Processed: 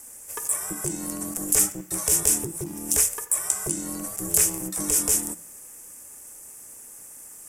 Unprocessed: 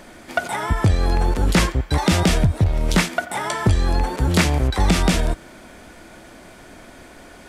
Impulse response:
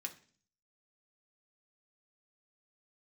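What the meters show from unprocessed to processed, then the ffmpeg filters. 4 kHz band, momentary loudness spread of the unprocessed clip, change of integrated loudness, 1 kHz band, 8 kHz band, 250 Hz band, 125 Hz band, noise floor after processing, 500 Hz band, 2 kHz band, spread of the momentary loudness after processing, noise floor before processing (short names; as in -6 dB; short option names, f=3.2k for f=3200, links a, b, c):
-10.0 dB, 7 LU, -3.0 dB, -16.0 dB, +10.5 dB, -11.5 dB, -21.0 dB, -45 dBFS, -11.0 dB, -15.0 dB, 21 LU, -44 dBFS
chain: -filter_complex "[0:a]aeval=exprs='val(0)*sin(2*PI*250*n/s)':c=same,aexciter=amount=15.4:drive=8.9:freq=6.3k,asplit=2[a][b];[1:a]atrim=start_sample=2205[c];[b][c]afir=irnorm=-1:irlink=0,volume=-3dB[d];[a][d]amix=inputs=2:normalize=0,volume=-15.5dB"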